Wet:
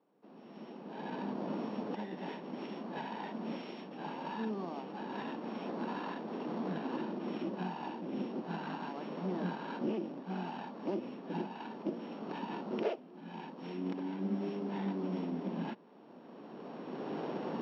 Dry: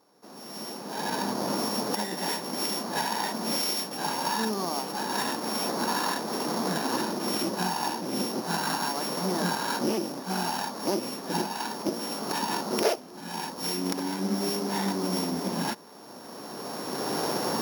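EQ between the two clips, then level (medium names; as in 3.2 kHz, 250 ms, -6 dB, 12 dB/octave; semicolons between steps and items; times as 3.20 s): high-pass 150 Hz 24 dB/octave; four-pole ladder low-pass 3.4 kHz, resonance 50%; tilt shelf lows +7.5 dB, about 780 Hz; -2.5 dB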